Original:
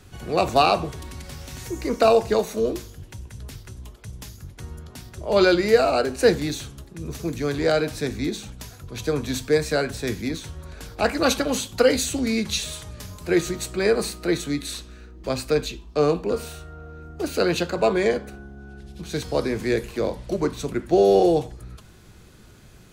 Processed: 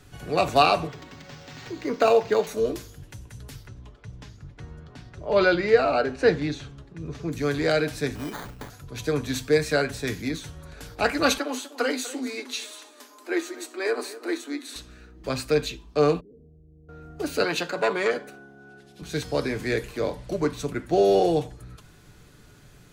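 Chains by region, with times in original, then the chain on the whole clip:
0.87–2.47 s: high-pass 140 Hz + decimation joined by straight lines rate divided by 4×
3.67–7.32 s: low-pass 6 kHz + treble shelf 4.4 kHz -9.5 dB
8.15–8.70 s: peaking EQ 3 kHz +14 dB 0.41 oct + sample-rate reducer 2.7 kHz + compression, threshold -27 dBFS
11.38–14.76 s: rippled Chebyshev high-pass 240 Hz, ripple 6 dB + delay 247 ms -16 dB
16.20–16.89 s: inverse Chebyshev low-pass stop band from 2.3 kHz, stop band 80 dB + level held to a coarse grid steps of 24 dB
17.44–19.02 s: high-pass 220 Hz + transformer saturation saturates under 890 Hz
whole clip: peaking EQ 1.6 kHz +2 dB; comb 6.9 ms, depth 37%; dynamic bell 2.4 kHz, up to +3 dB, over -34 dBFS, Q 0.8; trim -3 dB

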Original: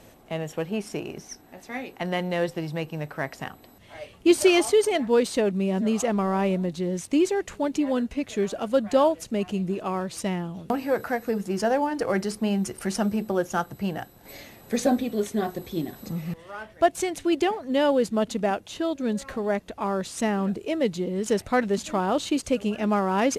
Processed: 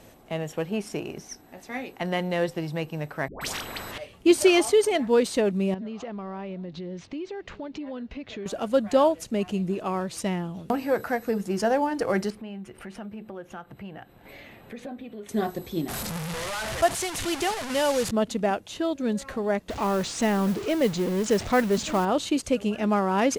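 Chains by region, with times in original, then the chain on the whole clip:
3.28–3.98 s: tilt EQ -3.5 dB/octave + phase dispersion highs, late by 131 ms, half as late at 680 Hz + spectrum-flattening compressor 10:1
5.74–8.46 s: low-pass 4.6 kHz 24 dB/octave + compression 4:1, threshold -34 dBFS
12.30–15.29 s: resonant high shelf 4 kHz -11 dB, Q 1.5 + compression 2.5:1, threshold -42 dBFS
15.88–18.11 s: one-bit delta coder 64 kbps, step -24 dBFS + peaking EQ 300 Hz -7.5 dB 1.2 oct
19.69–22.05 s: jump at every zero crossing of -31 dBFS + low-pass 7.5 kHz 24 dB/octave + modulation noise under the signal 23 dB
whole clip: none

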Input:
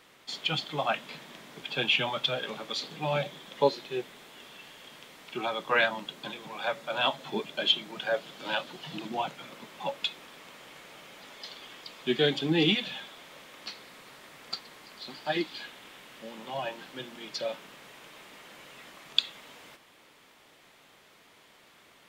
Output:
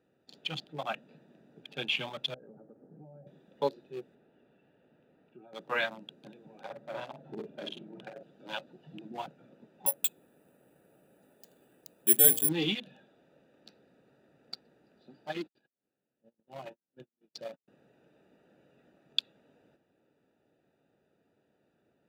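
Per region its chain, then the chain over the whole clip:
2.34–3.27 s: Gaussian low-pass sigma 6.8 samples + compression 10:1, threshold -39 dBFS
4.15–5.53 s: low-pass 3.1 kHz + compression 2:1, threshold -48 dBFS
6.61–8.23 s: treble shelf 2.3 kHz -11 dB + compressor with a negative ratio -32 dBFS, ratio -0.5 + doubling 47 ms -3.5 dB
9.86–12.49 s: treble shelf 4 kHz -7 dB + de-hum 227.9 Hz, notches 39 + careless resampling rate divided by 4×, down none, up zero stuff
15.29–17.68 s: gate -40 dBFS, range -48 dB + upward compressor, threshold -50 dBFS
whole clip: local Wiener filter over 41 samples; high-pass 74 Hz; treble shelf 7.8 kHz +7.5 dB; trim -6 dB

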